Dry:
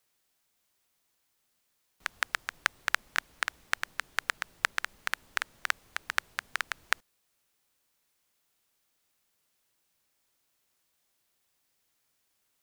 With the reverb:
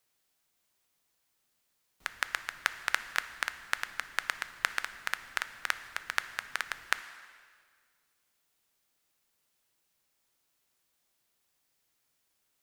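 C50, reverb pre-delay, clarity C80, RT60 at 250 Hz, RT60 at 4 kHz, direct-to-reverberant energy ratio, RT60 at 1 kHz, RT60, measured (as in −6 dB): 13.0 dB, 6 ms, 14.0 dB, 1.8 s, 1.6 s, 11.5 dB, 1.8 s, 1.8 s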